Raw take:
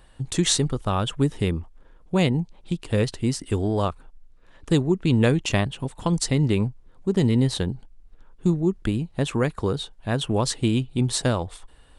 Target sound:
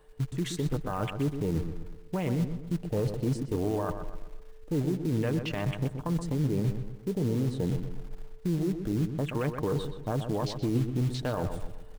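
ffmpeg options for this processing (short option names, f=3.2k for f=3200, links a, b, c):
-filter_complex "[0:a]afwtdn=0.0282,lowshelf=f=230:g=-6.5,aecho=1:1:6.6:0.37,areverse,acompressor=threshold=-35dB:ratio=10,areverse,alimiter=level_in=10dB:limit=-24dB:level=0:latency=1:release=37,volume=-10dB,asplit=2[a][b];[b]adynamicsmooth=sensitivity=5.5:basefreq=2.3k,volume=2dB[c];[a][c]amix=inputs=2:normalize=0,aeval=exprs='val(0)+0.000501*sin(2*PI*440*n/s)':c=same,acrusher=bits=5:mode=log:mix=0:aa=0.000001,asplit=2[d][e];[e]adelay=125,lowpass=f=2.6k:p=1,volume=-8dB,asplit=2[f][g];[g]adelay=125,lowpass=f=2.6k:p=1,volume=0.44,asplit=2[h][i];[i]adelay=125,lowpass=f=2.6k:p=1,volume=0.44,asplit=2[j][k];[k]adelay=125,lowpass=f=2.6k:p=1,volume=0.44,asplit=2[l][m];[m]adelay=125,lowpass=f=2.6k:p=1,volume=0.44[n];[d][f][h][j][l][n]amix=inputs=6:normalize=0,volume=5.5dB"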